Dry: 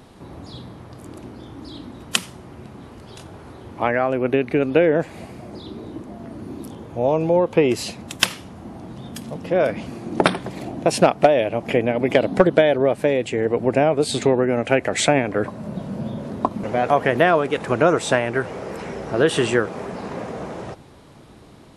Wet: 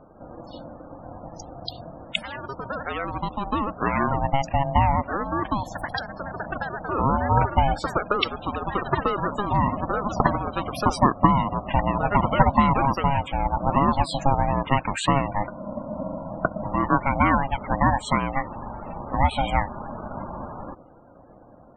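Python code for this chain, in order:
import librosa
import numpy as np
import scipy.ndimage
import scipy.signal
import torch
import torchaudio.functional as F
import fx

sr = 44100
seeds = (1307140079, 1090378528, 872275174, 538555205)

y = fx.echo_pitch(x, sr, ms=162, semitones=6, count=2, db_per_echo=-6.0)
y = fx.spec_topn(y, sr, count=32)
y = y * np.sin(2.0 * np.pi * 410.0 * np.arange(len(y)) / sr)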